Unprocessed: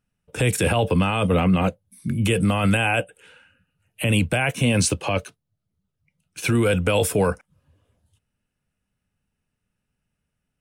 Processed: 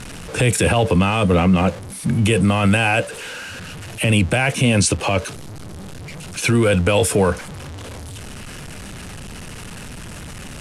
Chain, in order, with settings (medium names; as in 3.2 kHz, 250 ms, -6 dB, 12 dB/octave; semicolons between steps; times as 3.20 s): jump at every zero crossing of -32.5 dBFS; low-pass 11 kHz 24 dB/octave; in parallel at -1.5 dB: peak limiter -17 dBFS, peak gain reduction 7 dB